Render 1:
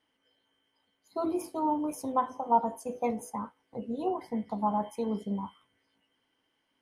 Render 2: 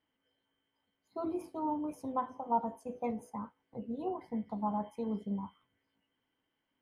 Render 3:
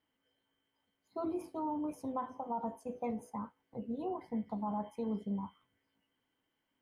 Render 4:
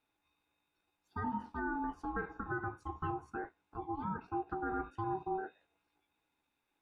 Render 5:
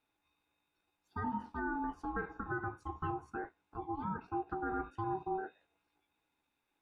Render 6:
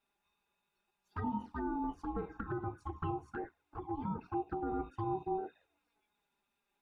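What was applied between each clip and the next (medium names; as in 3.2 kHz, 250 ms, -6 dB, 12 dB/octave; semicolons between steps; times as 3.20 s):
tone controls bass +5 dB, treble -9 dB; trim -6.5 dB
peak limiter -28.5 dBFS, peak gain reduction 9 dB
ring modulator 570 Hz; low-pass that closes with the level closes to 2.9 kHz, closed at -37.5 dBFS; trim +2.5 dB
no audible change
touch-sensitive flanger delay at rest 5.1 ms, full sweep at -35 dBFS; trim +2.5 dB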